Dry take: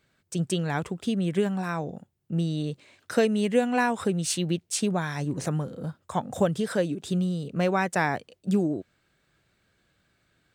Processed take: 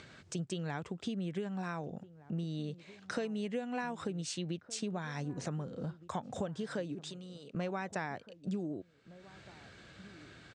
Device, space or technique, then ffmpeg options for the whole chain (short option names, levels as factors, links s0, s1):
upward and downward compression: -filter_complex "[0:a]acompressor=mode=upward:threshold=0.0126:ratio=2.5,acompressor=threshold=0.02:ratio=4,highpass=60,asettb=1/sr,asplit=3[s0][s1][s2];[s0]atrim=end=7.034[s3];[s1]atrim=start=7.03:end=7.55,asetpts=PTS-STARTPTS,afade=t=in:d=0.004:c=qsin,afade=t=out:st=0.516:d=0.004:c=qsin,highpass=f=740:p=1[s4];[s2]atrim=start=7.546[s5];[s3][s4]acrossfade=d=0.004:c1=hsin:c2=qsin[s6];[s6][s5]acrossfade=d=0.004:c1=qsin:c2=hsin,lowpass=f=7200:w=0.5412,lowpass=f=7200:w=1.3066,asplit=2[s7][s8];[s8]adelay=1516,volume=0.126,highshelf=f=4000:g=-34.1[s9];[s7][s9]amix=inputs=2:normalize=0,volume=0.794"